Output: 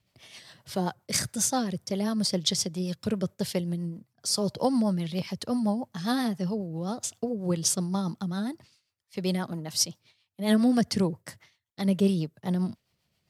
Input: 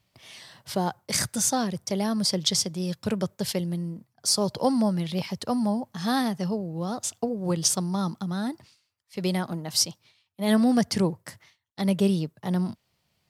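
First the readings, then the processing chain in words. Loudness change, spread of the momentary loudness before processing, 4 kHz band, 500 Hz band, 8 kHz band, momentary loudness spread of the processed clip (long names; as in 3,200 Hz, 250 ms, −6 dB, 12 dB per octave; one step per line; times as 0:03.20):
−2.0 dB, 8 LU, −3.0 dB, −2.0 dB, −2.5 dB, 9 LU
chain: rotating-speaker cabinet horn 7.5 Hz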